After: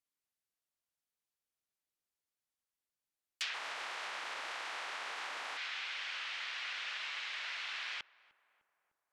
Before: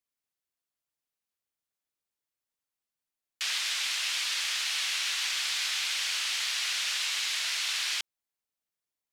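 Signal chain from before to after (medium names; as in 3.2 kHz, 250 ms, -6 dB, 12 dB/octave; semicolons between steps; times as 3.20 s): 3.53–5.56 s: spectral peaks clipped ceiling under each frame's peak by 22 dB; low-pass that closes with the level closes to 2.2 kHz, closed at -27.5 dBFS; filtered feedback delay 302 ms, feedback 66%, low-pass 1.3 kHz, level -20 dB; trim -3.5 dB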